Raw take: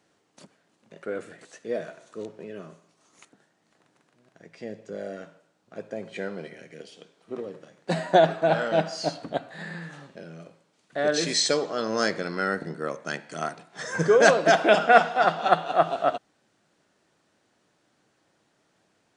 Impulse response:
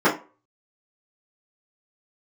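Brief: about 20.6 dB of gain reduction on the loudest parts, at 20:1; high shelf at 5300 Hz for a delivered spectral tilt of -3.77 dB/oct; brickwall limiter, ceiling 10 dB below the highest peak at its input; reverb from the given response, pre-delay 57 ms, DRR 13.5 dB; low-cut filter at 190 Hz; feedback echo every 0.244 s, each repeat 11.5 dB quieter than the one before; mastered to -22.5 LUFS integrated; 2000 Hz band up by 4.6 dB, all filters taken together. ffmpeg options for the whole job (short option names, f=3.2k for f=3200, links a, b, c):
-filter_complex "[0:a]highpass=190,equalizer=f=2k:t=o:g=7.5,highshelf=f=5.3k:g=-6.5,acompressor=threshold=-30dB:ratio=20,alimiter=level_in=3dB:limit=-24dB:level=0:latency=1,volume=-3dB,aecho=1:1:244|488|732:0.266|0.0718|0.0194,asplit=2[a][b];[1:a]atrim=start_sample=2205,adelay=57[c];[b][c]afir=irnorm=-1:irlink=0,volume=-34.5dB[d];[a][d]amix=inputs=2:normalize=0,volume=16dB"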